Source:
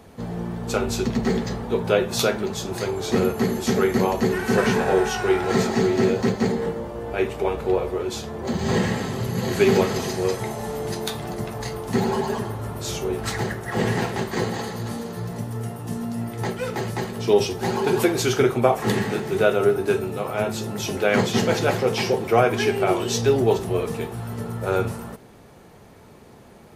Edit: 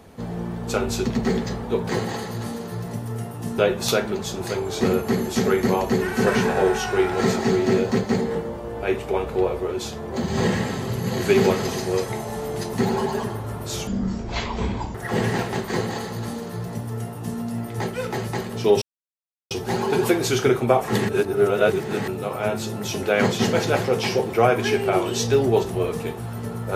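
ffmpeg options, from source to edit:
-filter_complex "[0:a]asplit=9[a][b][c][d][e][f][g][h][i];[a]atrim=end=1.892[j];[b]atrim=start=14.338:end=16.032[k];[c]atrim=start=1.888:end=11.042[l];[d]atrim=start=11.878:end=13.024[m];[e]atrim=start=13.02:end=13.58,asetpts=PTS-STARTPTS,asetrate=22932,aresample=44100,atrim=end_sample=47492,asetpts=PTS-STARTPTS[n];[f]atrim=start=13.576:end=17.45,asetpts=PTS-STARTPTS,afade=t=out:st=3.87:d=0.004:c=hsin,apad=pad_dur=0.69[o];[g]atrim=start=17.45:end=19.032,asetpts=PTS-STARTPTS,afade=t=in:d=0.004:c=hsin[p];[h]atrim=start=19.028:end=20.022,asetpts=PTS-STARTPTS,areverse[q];[i]atrim=start=20.018[r];[j][k]acrossfade=d=0.004:c1=hsin:c2=hsin[s];[s][l]acrossfade=d=0.004:c1=hsin:c2=hsin[t];[t][m]acrossfade=d=0.004:c1=hsin:c2=hsin[u];[u][n]acrossfade=d=0.004:c1=hsin:c2=hsin[v];[o][p]concat=n=2:v=0:a=1[w];[v][w]acrossfade=d=0.004:c1=hsin:c2=hsin[x];[x][q]acrossfade=d=0.004:c1=hsin:c2=hsin[y];[y][r]acrossfade=d=0.004:c1=hsin:c2=hsin"

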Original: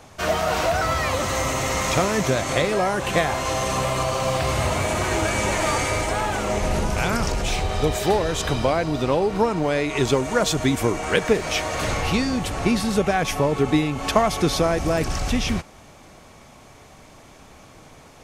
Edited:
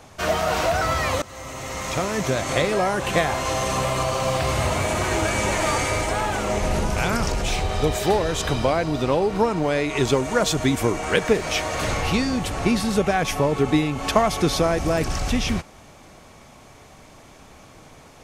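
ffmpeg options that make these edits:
-filter_complex "[0:a]asplit=2[a][b];[a]atrim=end=1.22,asetpts=PTS-STARTPTS,afade=t=out:st=1.216:d=0.004:c=hsin:silence=0.105925[c];[b]atrim=start=1.22,asetpts=PTS-STARTPTS,afade=t=in:d=1.38:silence=0.105925[d];[c][d]concat=n=2:v=0:a=1"

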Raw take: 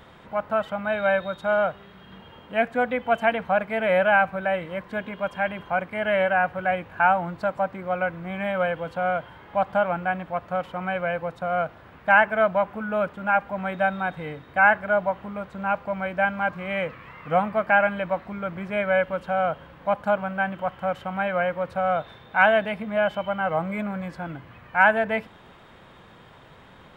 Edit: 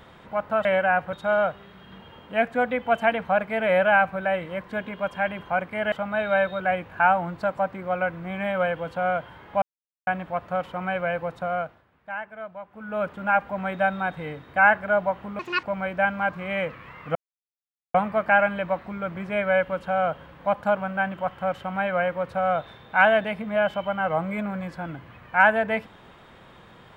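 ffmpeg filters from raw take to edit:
-filter_complex "[0:a]asplit=12[a][b][c][d][e][f][g][h][i][j][k][l];[a]atrim=end=0.652[m];[b]atrim=start=6.118:end=6.602[n];[c]atrim=start=1.328:end=6.122[o];[d]atrim=start=0.648:end=1.332[p];[e]atrim=start=6.598:end=9.62,asetpts=PTS-STARTPTS,afade=t=out:st=3.018:d=0.004:c=hsin[q];[f]atrim=start=9.62:end=10.07,asetpts=PTS-STARTPTS,volume=0[r];[g]atrim=start=10.07:end=11.86,asetpts=PTS-STARTPTS,afade=t=in:d=0.004:c=hsin,afade=t=out:st=1.36:d=0.43:silence=0.149624[s];[h]atrim=start=11.86:end=12.7,asetpts=PTS-STARTPTS,volume=-16.5dB[t];[i]atrim=start=12.7:end=15.394,asetpts=PTS-STARTPTS,afade=t=in:d=0.43:silence=0.149624[u];[j]atrim=start=15.39:end=15.83,asetpts=PTS-STARTPTS,asetrate=79821,aresample=44100,atrim=end_sample=10720,asetpts=PTS-STARTPTS[v];[k]atrim=start=15.826:end=17.35,asetpts=PTS-STARTPTS,afade=t=out:st=1.52:d=0.004:c=hsin,apad=pad_dur=0.79[w];[l]atrim=start=17.35,asetpts=PTS-STARTPTS,afade=t=in:d=0.004:c=hsin[x];[m][n]acrossfade=d=0.004:c1=hsin:c2=hsin[y];[y][o]acrossfade=d=0.004:c1=hsin:c2=hsin[z];[z][p]acrossfade=d=0.004:c1=hsin:c2=hsin[aa];[q][r][s][t][u]concat=n=5:v=0:a=1[ab];[aa][ab]acrossfade=d=0.004:c1=hsin:c2=hsin[ac];[ac][v]acrossfade=d=0.004:c1=hsin:c2=hsin[ad];[w][x]concat=n=2:v=0:a=1[ae];[ad][ae]acrossfade=d=0.004:c1=hsin:c2=hsin"

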